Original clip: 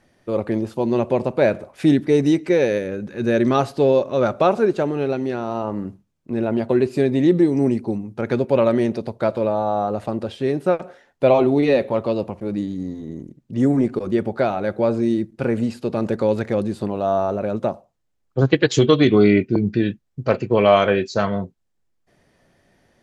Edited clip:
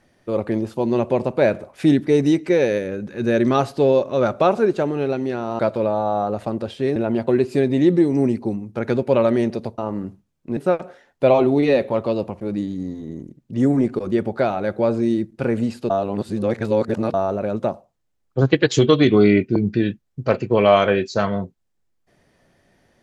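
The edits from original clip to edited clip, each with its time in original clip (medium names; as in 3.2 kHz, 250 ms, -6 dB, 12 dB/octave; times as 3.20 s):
5.59–6.38 s: swap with 9.20–10.57 s
15.90–17.14 s: reverse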